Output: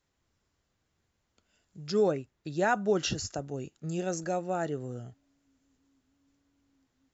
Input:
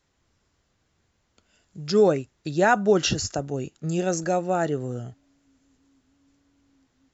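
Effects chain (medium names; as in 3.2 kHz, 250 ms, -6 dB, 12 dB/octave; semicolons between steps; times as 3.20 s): 2.11–2.51 s: treble shelf 5.5 kHz -9 dB; trim -7.5 dB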